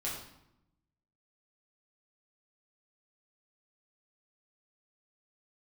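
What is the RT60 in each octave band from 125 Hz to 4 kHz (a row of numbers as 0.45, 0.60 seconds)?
1.3, 1.2, 0.85, 0.80, 0.70, 0.65 seconds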